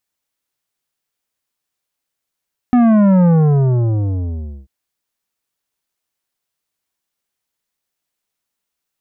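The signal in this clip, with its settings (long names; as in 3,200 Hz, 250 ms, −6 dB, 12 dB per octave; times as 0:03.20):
bass drop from 250 Hz, over 1.94 s, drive 11 dB, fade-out 1.42 s, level −9 dB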